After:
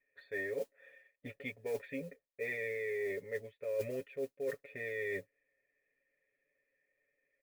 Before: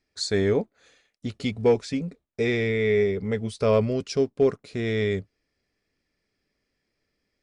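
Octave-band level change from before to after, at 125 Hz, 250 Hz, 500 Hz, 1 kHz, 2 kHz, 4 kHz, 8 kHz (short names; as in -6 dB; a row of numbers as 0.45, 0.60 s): -24.0, -21.5, -15.0, -22.5, -7.5, -24.5, -19.5 dB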